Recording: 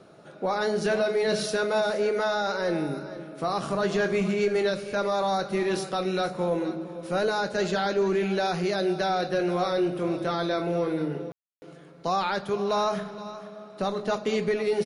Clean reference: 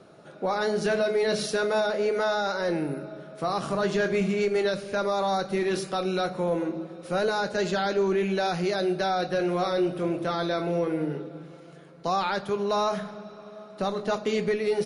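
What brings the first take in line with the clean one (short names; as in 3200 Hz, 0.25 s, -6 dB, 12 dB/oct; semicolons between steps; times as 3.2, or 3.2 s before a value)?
room tone fill 11.32–11.62; inverse comb 0.471 s -15 dB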